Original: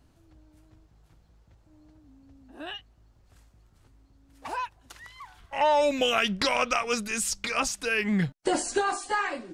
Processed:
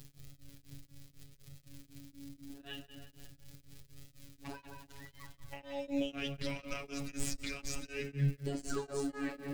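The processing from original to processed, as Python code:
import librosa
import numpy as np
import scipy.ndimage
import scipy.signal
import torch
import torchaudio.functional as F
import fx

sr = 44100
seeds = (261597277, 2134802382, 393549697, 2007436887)

p1 = fx.tracing_dist(x, sr, depth_ms=0.028)
p2 = fx.high_shelf(p1, sr, hz=6000.0, db=-11.5)
p3 = fx.dmg_crackle(p2, sr, seeds[0], per_s=230.0, level_db=-39.0)
p4 = fx.over_compress(p3, sr, threshold_db=-35.0, ratio=-1.0)
p5 = p3 + (p4 * 10.0 ** (0.5 / 20.0))
p6 = fx.spec_paint(p5, sr, seeds[1], shape='fall', start_s=8.7, length_s=0.41, low_hz=230.0, high_hz=1600.0, level_db=-23.0)
p7 = fx.tone_stack(p6, sr, knobs='10-0-1')
p8 = fx.robotise(p7, sr, hz=140.0)
p9 = p8 + fx.echo_tape(p8, sr, ms=176, feedback_pct=51, wet_db=-5.5, lp_hz=2800.0, drive_db=30.0, wow_cents=9, dry=0)
p10 = fx.rev_fdn(p9, sr, rt60_s=2.4, lf_ratio=1.3, hf_ratio=0.6, size_ms=35.0, drr_db=10.0)
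p11 = p10 * np.abs(np.cos(np.pi * 4.0 * np.arange(len(p10)) / sr))
y = p11 * 10.0 ** (11.5 / 20.0)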